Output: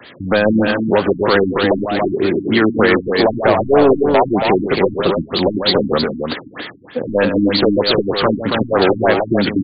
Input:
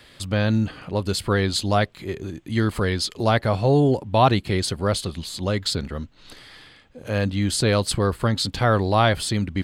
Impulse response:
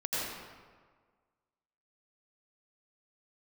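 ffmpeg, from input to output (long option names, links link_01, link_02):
-filter_complex "[0:a]agate=range=-10dB:threshold=-44dB:ratio=16:detection=peak,highpass=180,highshelf=frequency=5900:gain=-7,asplit=2[link_01][link_02];[link_02]acompressor=threshold=-33dB:ratio=6,volume=3dB[link_03];[link_01][link_03]amix=inputs=2:normalize=0,alimiter=limit=-12dB:level=0:latency=1:release=69,acrossover=split=300|3000[link_04][link_05][link_06];[link_04]acompressor=threshold=-46dB:ratio=2[link_07];[link_07][link_05][link_06]amix=inputs=3:normalize=0,aeval=exprs='0.299*sin(PI/2*2.51*val(0)/0.299)':channel_layout=same,aecho=1:1:142.9|277:0.355|0.562,afftfilt=real='re*lt(b*sr/1024,310*pow(4900/310,0.5+0.5*sin(2*PI*3.2*pts/sr)))':imag='im*lt(b*sr/1024,310*pow(4900/310,0.5+0.5*sin(2*PI*3.2*pts/sr)))':win_size=1024:overlap=0.75,volume=3.5dB"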